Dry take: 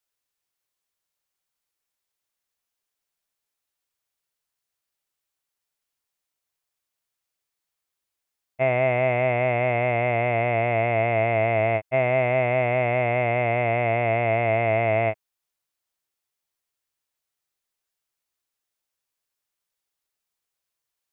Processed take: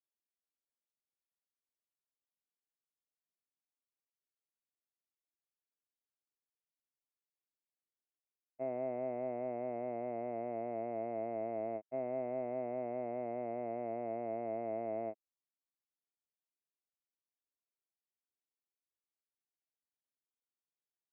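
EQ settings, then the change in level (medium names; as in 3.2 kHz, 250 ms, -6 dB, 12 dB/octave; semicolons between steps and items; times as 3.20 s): ladder band-pass 300 Hz, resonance 40%; bass shelf 260 Hz -9.5 dB; +1.5 dB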